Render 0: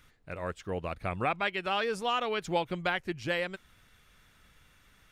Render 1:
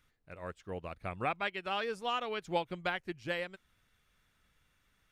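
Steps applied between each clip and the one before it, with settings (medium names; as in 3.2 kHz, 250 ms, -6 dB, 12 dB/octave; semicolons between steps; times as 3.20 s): upward expansion 1.5:1, over -42 dBFS; trim -2.5 dB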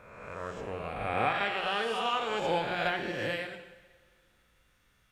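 reverse spectral sustain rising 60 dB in 1.43 s; two-slope reverb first 0.96 s, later 2.6 s, from -18 dB, DRR 5 dB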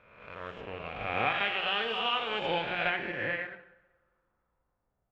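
companding laws mixed up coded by A; low-pass sweep 3 kHz -> 700 Hz, 2.59–5.11 s; trim -1.5 dB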